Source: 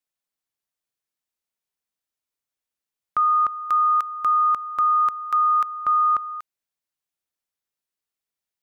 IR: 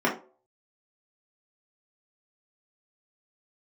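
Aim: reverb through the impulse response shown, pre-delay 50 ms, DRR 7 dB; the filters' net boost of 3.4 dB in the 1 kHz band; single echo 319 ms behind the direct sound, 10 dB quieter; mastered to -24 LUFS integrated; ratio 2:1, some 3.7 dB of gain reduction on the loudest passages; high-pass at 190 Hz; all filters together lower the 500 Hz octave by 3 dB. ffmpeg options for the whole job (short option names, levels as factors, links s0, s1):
-filter_complex "[0:a]highpass=190,equalizer=f=500:t=o:g=-6,equalizer=f=1000:t=o:g=5.5,acompressor=threshold=0.1:ratio=2,aecho=1:1:319:0.316,asplit=2[s0][s1];[1:a]atrim=start_sample=2205,adelay=50[s2];[s1][s2]afir=irnorm=-1:irlink=0,volume=0.0841[s3];[s0][s3]amix=inputs=2:normalize=0,volume=0.891"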